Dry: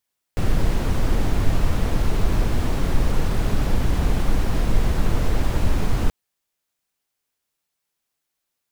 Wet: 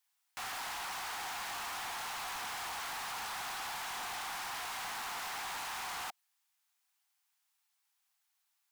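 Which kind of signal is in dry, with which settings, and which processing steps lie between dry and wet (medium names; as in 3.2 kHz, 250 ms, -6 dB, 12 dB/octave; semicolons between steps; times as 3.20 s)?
noise brown, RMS -17 dBFS 5.73 s
steep high-pass 720 Hz 96 dB/octave; hard clipper -38.5 dBFS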